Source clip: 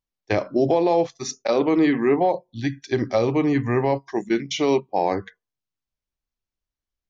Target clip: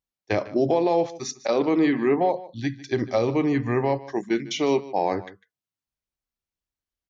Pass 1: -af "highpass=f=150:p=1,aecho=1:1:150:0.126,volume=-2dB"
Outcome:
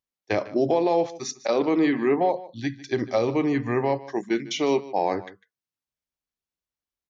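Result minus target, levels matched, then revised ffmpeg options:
125 Hz band -2.5 dB
-af "highpass=f=46:p=1,aecho=1:1:150:0.126,volume=-2dB"

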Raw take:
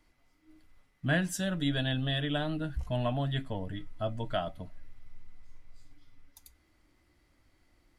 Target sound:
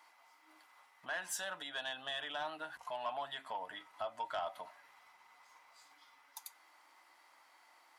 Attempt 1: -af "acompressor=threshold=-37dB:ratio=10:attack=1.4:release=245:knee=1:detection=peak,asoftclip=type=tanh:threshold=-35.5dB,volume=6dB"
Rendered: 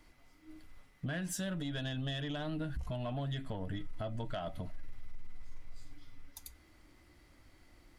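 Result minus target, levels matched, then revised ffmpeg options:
1000 Hz band -9.0 dB
-af "acompressor=threshold=-37dB:ratio=10:attack=1.4:release=245:knee=1:detection=peak,highpass=f=910:t=q:w=3.4,asoftclip=type=tanh:threshold=-35.5dB,volume=6dB"

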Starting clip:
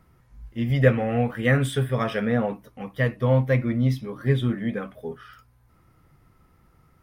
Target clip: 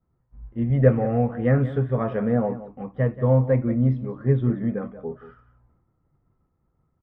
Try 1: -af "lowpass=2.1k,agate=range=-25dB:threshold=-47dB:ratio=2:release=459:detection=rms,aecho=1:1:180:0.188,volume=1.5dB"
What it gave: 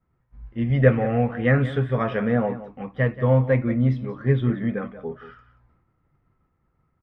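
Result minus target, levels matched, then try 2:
2000 Hz band +8.5 dB
-af "lowpass=990,agate=range=-25dB:threshold=-47dB:ratio=2:release=459:detection=rms,aecho=1:1:180:0.188,volume=1.5dB"

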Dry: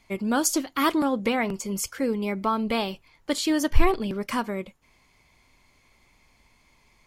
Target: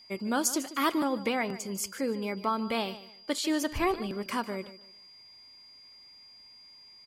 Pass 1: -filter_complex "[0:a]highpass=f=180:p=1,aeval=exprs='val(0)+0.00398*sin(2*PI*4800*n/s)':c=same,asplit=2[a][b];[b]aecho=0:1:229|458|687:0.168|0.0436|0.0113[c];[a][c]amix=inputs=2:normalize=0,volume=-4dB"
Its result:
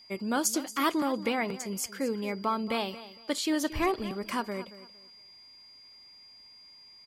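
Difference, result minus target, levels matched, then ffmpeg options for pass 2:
echo 80 ms late
-filter_complex "[0:a]highpass=f=180:p=1,aeval=exprs='val(0)+0.00398*sin(2*PI*4800*n/s)':c=same,asplit=2[a][b];[b]aecho=0:1:149|298|447:0.168|0.0436|0.0113[c];[a][c]amix=inputs=2:normalize=0,volume=-4dB"

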